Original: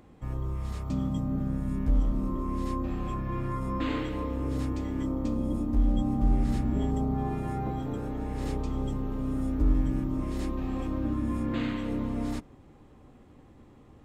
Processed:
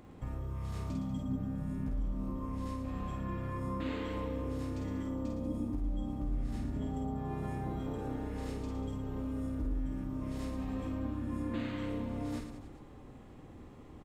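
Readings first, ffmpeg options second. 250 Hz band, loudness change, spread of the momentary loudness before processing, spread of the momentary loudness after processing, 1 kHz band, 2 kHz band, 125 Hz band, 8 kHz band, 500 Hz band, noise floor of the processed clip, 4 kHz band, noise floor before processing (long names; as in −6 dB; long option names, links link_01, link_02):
−7.0 dB, −7.0 dB, 6 LU, 6 LU, −7.0 dB, −5.5 dB, −7.0 dB, can't be measured, −5.0 dB, −52 dBFS, −6.0 dB, −54 dBFS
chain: -filter_complex "[0:a]acompressor=threshold=-35dB:ratio=6,asplit=2[link_01][link_02];[link_02]aecho=0:1:50|112.5|190.6|288.3|410.4:0.631|0.398|0.251|0.158|0.1[link_03];[link_01][link_03]amix=inputs=2:normalize=0"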